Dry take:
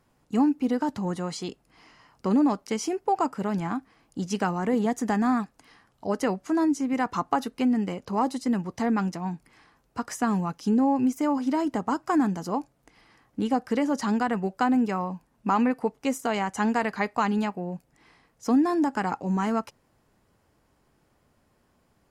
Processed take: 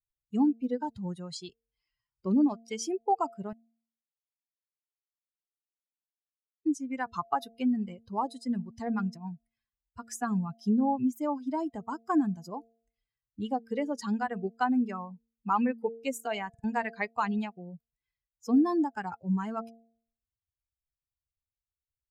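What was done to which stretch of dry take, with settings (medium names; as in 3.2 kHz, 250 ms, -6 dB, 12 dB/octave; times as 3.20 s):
3.53–6.66 s: mute
16.49 s: stutter in place 0.05 s, 3 plays
whole clip: expander on every frequency bin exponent 2; de-hum 228.5 Hz, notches 3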